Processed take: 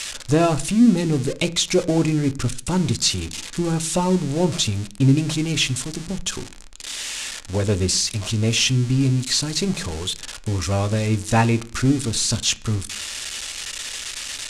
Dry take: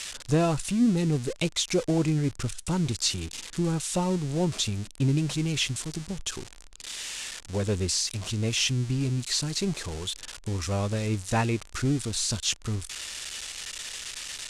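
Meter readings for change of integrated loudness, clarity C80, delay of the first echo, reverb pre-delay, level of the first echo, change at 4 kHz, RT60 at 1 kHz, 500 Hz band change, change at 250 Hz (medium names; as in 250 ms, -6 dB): +7.0 dB, 24.0 dB, no echo, 3 ms, no echo, +6.5 dB, 0.40 s, +6.5 dB, +7.0 dB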